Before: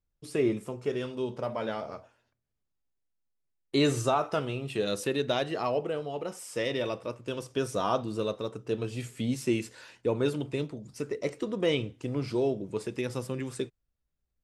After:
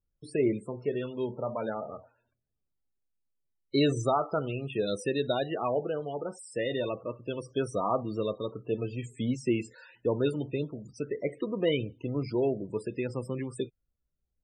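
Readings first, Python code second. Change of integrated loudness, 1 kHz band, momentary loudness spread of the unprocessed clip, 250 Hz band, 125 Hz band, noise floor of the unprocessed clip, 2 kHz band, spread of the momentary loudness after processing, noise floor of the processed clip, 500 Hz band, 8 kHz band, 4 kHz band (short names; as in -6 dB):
-0.5 dB, -0.5 dB, 8 LU, 0.0 dB, 0.0 dB, -81 dBFS, -2.5 dB, 8 LU, -81 dBFS, 0.0 dB, -5.5 dB, -3.0 dB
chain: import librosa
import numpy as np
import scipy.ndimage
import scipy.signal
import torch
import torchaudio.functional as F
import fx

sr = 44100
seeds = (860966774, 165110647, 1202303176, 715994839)

y = fx.spec_topn(x, sr, count=32)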